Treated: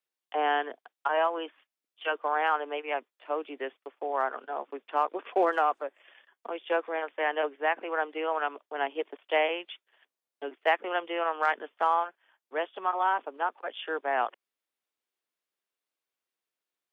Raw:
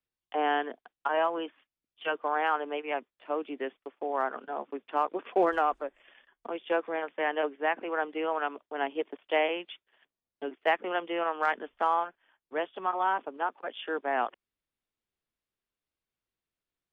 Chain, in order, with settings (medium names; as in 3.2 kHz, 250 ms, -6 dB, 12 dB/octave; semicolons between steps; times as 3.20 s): high-pass 390 Hz 12 dB/octave; trim +1.5 dB